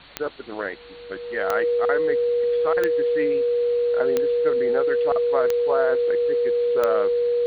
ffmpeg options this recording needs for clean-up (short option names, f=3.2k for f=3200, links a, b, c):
-af "adeclick=t=4,bandreject=f=49.6:t=h:w=4,bandreject=f=99.2:t=h:w=4,bandreject=f=148.8:t=h:w=4,bandreject=f=198.4:t=h:w=4,bandreject=f=248:t=h:w=4,bandreject=f=480:w=30,afwtdn=0.0079"